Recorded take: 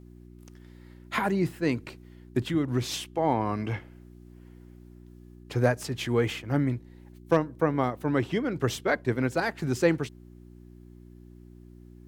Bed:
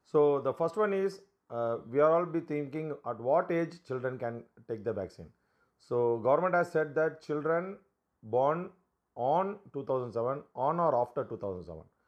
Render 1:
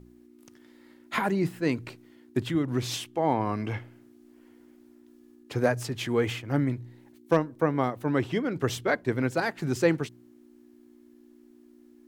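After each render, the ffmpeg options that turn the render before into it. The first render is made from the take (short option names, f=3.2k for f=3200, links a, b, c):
-af "bandreject=f=60:t=h:w=4,bandreject=f=120:t=h:w=4,bandreject=f=180:t=h:w=4"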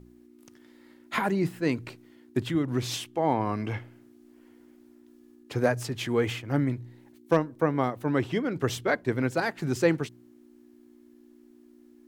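-af anull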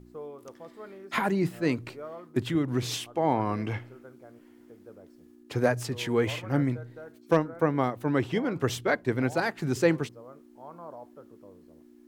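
-filter_complex "[1:a]volume=-16dB[a];[0:a][a]amix=inputs=2:normalize=0"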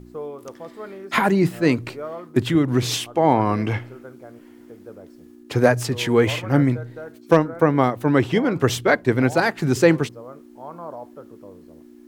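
-af "volume=8.5dB,alimiter=limit=-2dB:level=0:latency=1"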